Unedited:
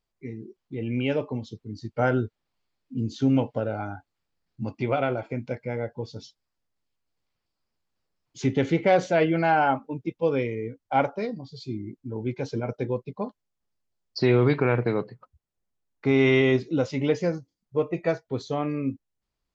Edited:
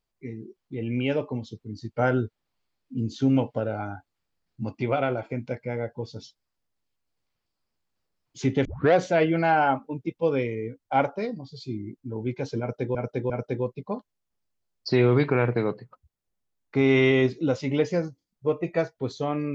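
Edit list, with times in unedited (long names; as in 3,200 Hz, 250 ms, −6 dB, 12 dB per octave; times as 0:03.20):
0:08.65: tape start 0.29 s
0:12.60–0:12.95: repeat, 3 plays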